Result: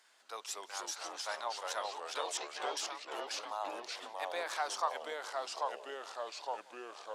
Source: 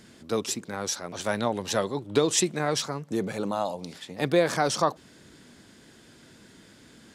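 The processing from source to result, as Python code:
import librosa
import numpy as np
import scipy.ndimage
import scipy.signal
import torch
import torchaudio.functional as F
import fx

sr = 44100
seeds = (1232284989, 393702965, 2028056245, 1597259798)

y = fx.cvsd(x, sr, bps=32000, at=(2.37, 2.77))
y = fx.ladder_highpass(y, sr, hz=690.0, resonance_pct=35)
y = fx.echo_pitch(y, sr, ms=200, semitones=-2, count=3, db_per_echo=-3.0)
y = y + 10.0 ** (-23.5 / 20.0) * np.pad(y, (int(180 * sr / 1000.0), 0))[:len(y)]
y = y * 10.0 ** (-3.5 / 20.0)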